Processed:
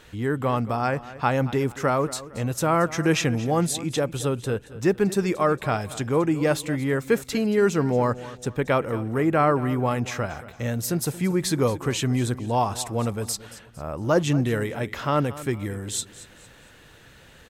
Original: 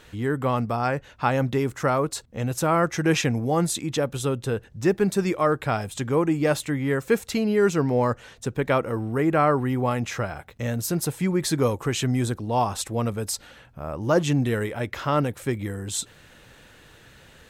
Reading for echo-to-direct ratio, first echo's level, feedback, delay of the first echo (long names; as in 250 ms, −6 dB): −16.0 dB, −16.5 dB, 37%, 228 ms